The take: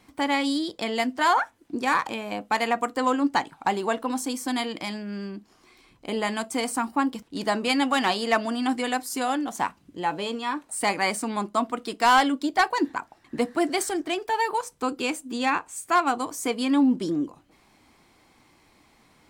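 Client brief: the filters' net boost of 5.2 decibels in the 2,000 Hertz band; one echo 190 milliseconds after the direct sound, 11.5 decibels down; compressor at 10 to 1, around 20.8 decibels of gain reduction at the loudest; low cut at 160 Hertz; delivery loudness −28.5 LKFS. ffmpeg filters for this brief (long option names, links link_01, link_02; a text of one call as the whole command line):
ffmpeg -i in.wav -af "highpass=160,equalizer=frequency=2000:width_type=o:gain=6.5,acompressor=threshold=-35dB:ratio=10,aecho=1:1:190:0.266,volume=10dB" out.wav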